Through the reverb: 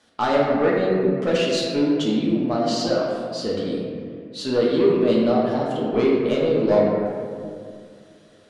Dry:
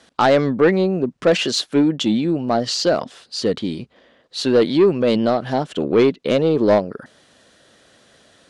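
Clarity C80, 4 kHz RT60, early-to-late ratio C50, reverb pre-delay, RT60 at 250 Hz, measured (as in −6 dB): 1.5 dB, 1.1 s, 0.0 dB, 3 ms, 2.7 s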